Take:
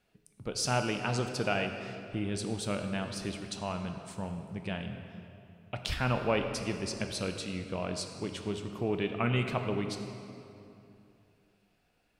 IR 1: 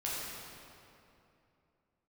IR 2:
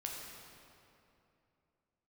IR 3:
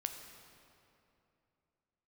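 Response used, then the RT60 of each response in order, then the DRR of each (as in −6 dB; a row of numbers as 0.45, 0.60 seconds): 3; 2.8, 2.8, 2.8 seconds; −7.5, −1.5, 5.0 decibels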